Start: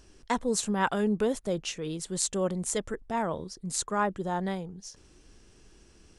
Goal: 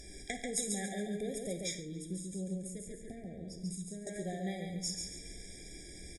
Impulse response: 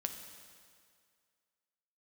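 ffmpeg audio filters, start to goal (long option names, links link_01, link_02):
-filter_complex "[0:a]acompressor=threshold=-44dB:ratio=5,equalizer=frequency=2400:width_type=o:width=0.26:gain=13,aecho=1:1:139|278|417|556:0.631|0.221|0.0773|0.0271,asettb=1/sr,asplit=3[link_01][link_02][link_03];[link_01]atrim=end=1.744[link_04];[link_02]atrim=start=1.74:end=4.07,asetpts=PTS-STARTPTS,afade=type=in:duration=0.004:curve=qsin,afade=type=out:start_time=2.326:duration=0.004:curve=qsin,acrossover=split=360[link_05][link_06];[link_06]acompressor=threshold=-60dB:ratio=6[link_07];[link_05][link_07]amix=inputs=2:normalize=0[link_08];[link_03]atrim=start=4.066[link_09];[link_04][link_08]acrossfade=duration=0.004:curve1=hsin:curve2=qsin[link_10];[link_10][link_09]acrossfade=duration=0.004:curve1=qsin:curve2=hsin,equalizer=frequency=10000:width_type=o:width=1.8:gain=13.5[link_11];[1:a]atrim=start_sample=2205,atrim=end_sample=4410,asetrate=42336,aresample=44100[link_12];[link_11][link_12]afir=irnorm=-1:irlink=0,afftfilt=real='re*eq(mod(floor(b*sr/1024/800),2),0)':imag='im*eq(mod(floor(b*sr/1024/800),2),0)':win_size=1024:overlap=0.75,volume=5dB"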